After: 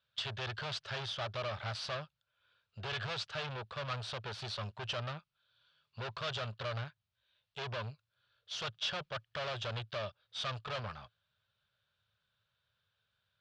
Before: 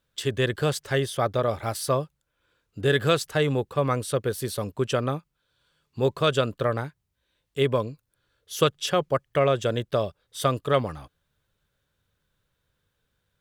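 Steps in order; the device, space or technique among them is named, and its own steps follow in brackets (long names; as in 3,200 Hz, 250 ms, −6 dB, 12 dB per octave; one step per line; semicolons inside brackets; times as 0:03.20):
scooped metal amplifier (tube saturation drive 34 dB, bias 0.8; loudspeaker in its box 110–4,300 Hz, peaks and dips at 110 Hz +8 dB, 210 Hz +7 dB, 370 Hz +6 dB, 620 Hz +7 dB, 1,400 Hz +3 dB, 2,000 Hz −6 dB; guitar amp tone stack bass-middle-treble 10-0-10)
level +7.5 dB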